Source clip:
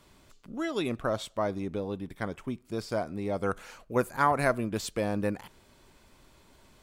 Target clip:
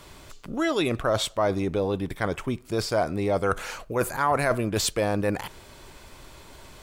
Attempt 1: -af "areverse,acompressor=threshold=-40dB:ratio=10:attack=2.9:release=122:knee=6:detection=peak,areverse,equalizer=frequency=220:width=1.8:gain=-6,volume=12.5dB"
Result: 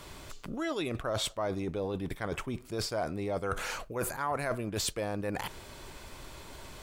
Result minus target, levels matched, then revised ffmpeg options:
downward compressor: peak gain reduction +9.5 dB
-af "areverse,acompressor=threshold=-29.5dB:ratio=10:attack=2.9:release=122:knee=6:detection=peak,areverse,equalizer=frequency=220:width=1.8:gain=-6,volume=12.5dB"

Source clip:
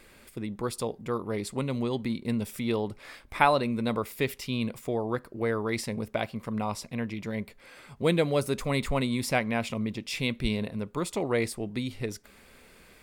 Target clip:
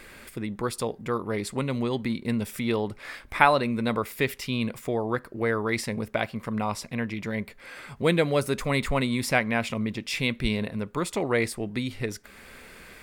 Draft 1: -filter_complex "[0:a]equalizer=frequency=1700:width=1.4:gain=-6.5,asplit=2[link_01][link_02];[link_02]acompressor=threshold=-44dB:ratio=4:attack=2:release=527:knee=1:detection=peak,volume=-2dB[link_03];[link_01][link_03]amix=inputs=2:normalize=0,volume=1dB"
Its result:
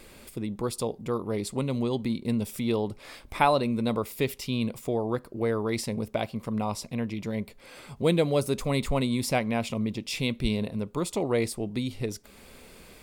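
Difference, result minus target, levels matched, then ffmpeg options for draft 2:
2,000 Hz band −6.5 dB
-filter_complex "[0:a]equalizer=frequency=1700:width=1.4:gain=5,asplit=2[link_01][link_02];[link_02]acompressor=threshold=-44dB:ratio=4:attack=2:release=527:knee=1:detection=peak,volume=-2dB[link_03];[link_01][link_03]amix=inputs=2:normalize=0,volume=1dB"

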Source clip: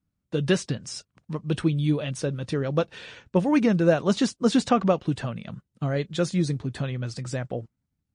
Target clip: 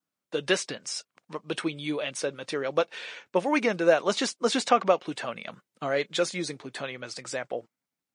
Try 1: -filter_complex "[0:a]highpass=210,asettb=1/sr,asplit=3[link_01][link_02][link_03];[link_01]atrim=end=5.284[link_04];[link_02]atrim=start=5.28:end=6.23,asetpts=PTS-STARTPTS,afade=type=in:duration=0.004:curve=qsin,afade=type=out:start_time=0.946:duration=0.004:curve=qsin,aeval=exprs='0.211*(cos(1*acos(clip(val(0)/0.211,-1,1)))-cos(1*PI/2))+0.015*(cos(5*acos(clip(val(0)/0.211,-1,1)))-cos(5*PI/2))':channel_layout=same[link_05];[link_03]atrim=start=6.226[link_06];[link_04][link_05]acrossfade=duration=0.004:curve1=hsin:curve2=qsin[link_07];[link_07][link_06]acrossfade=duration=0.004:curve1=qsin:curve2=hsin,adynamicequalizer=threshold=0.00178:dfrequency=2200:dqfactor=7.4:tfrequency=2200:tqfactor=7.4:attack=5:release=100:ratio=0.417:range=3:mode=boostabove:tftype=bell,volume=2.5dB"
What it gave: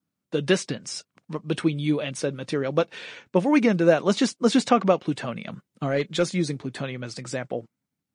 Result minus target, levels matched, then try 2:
250 Hz band +5.0 dB
-filter_complex "[0:a]highpass=480,asettb=1/sr,asplit=3[link_01][link_02][link_03];[link_01]atrim=end=5.284[link_04];[link_02]atrim=start=5.28:end=6.23,asetpts=PTS-STARTPTS,afade=type=in:duration=0.004:curve=qsin,afade=type=out:start_time=0.946:duration=0.004:curve=qsin,aeval=exprs='0.211*(cos(1*acos(clip(val(0)/0.211,-1,1)))-cos(1*PI/2))+0.015*(cos(5*acos(clip(val(0)/0.211,-1,1)))-cos(5*PI/2))':channel_layout=same[link_05];[link_03]atrim=start=6.226[link_06];[link_04][link_05]acrossfade=duration=0.004:curve1=hsin:curve2=qsin[link_07];[link_07][link_06]acrossfade=duration=0.004:curve1=qsin:curve2=hsin,adynamicequalizer=threshold=0.00178:dfrequency=2200:dqfactor=7.4:tfrequency=2200:tqfactor=7.4:attack=5:release=100:ratio=0.417:range=3:mode=boostabove:tftype=bell,volume=2.5dB"

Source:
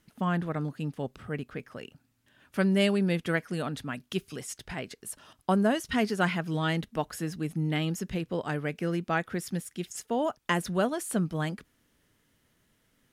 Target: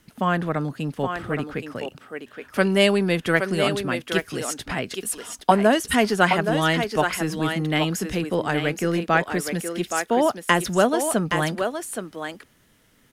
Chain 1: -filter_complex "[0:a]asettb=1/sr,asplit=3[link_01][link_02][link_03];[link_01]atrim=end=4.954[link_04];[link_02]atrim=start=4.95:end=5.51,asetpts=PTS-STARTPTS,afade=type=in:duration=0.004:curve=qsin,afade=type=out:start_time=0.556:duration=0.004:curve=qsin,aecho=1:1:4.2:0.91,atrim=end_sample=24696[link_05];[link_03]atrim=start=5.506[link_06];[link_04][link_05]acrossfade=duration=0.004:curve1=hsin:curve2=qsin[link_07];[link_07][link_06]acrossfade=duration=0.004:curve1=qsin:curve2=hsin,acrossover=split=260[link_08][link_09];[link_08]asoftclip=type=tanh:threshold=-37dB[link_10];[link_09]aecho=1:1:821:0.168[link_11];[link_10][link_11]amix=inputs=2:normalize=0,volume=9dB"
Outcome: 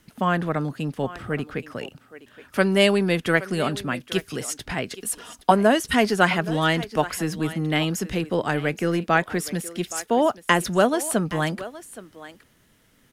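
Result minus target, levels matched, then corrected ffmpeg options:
echo-to-direct −9 dB
-filter_complex "[0:a]asettb=1/sr,asplit=3[link_01][link_02][link_03];[link_01]atrim=end=4.954[link_04];[link_02]atrim=start=4.95:end=5.51,asetpts=PTS-STARTPTS,afade=type=in:duration=0.004:curve=qsin,afade=type=out:start_time=0.556:duration=0.004:curve=qsin,aecho=1:1:4.2:0.91,atrim=end_sample=24696[link_05];[link_03]atrim=start=5.506[link_06];[link_04][link_05]acrossfade=duration=0.004:curve1=hsin:curve2=qsin[link_07];[link_07][link_06]acrossfade=duration=0.004:curve1=qsin:curve2=hsin,acrossover=split=260[link_08][link_09];[link_08]asoftclip=type=tanh:threshold=-37dB[link_10];[link_09]aecho=1:1:821:0.501[link_11];[link_10][link_11]amix=inputs=2:normalize=0,volume=9dB"

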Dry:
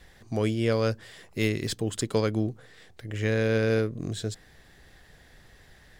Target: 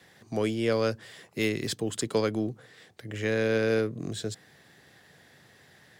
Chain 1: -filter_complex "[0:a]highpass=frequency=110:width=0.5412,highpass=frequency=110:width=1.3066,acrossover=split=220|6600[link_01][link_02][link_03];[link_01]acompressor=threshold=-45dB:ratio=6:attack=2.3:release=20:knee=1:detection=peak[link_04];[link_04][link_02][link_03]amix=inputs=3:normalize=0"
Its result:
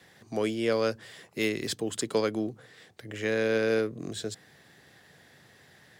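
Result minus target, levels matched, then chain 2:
downward compressor: peak gain reduction +8 dB
-filter_complex "[0:a]highpass=frequency=110:width=0.5412,highpass=frequency=110:width=1.3066,acrossover=split=220|6600[link_01][link_02][link_03];[link_01]acompressor=threshold=-35.5dB:ratio=6:attack=2.3:release=20:knee=1:detection=peak[link_04];[link_04][link_02][link_03]amix=inputs=3:normalize=0"

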